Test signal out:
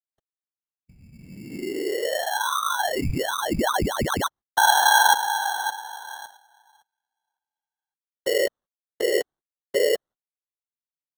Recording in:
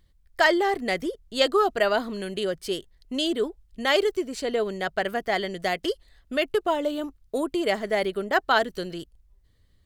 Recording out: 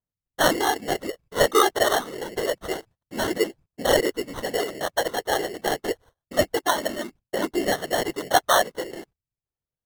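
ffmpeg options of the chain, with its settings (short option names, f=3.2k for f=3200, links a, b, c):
-filter_complex "[0:a]acrossover=split=250|3500[a][b][c];[a]acompressor=threshold=-49dB:ratio=10[d];[d][b][c]amix=inputs=3:normalize=0,agate=range=-28dB:threshold=-47dB:ratio=16:detection=peak,afftfilt=real='hypot(re,im)*cos(2*PI*random(0))':imag='hypot(re,im)*sin(2*PI*random(1))':win_size=512:overlap=0.75,lowshelf=f=180:g=-11,acrusher=samples=18:mix=1:aa=0.000001,aphaser=in_gain=1:out_gain=1:delay=2.7:decay=0.24:speed=0.27:type=triangular,volume=8.5dB" -ar 48000 -c:a libvorbis -b:a 192k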